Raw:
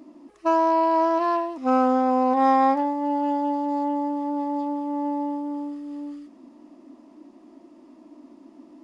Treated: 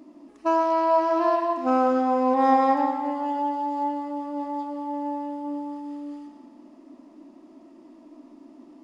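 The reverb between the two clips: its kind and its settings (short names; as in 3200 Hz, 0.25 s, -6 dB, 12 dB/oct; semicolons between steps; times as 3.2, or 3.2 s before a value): digital reverb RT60 1.4 s, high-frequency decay 0.75×, pre-delay 70 ms, DRR 4.5 dB; gain -1.5 dB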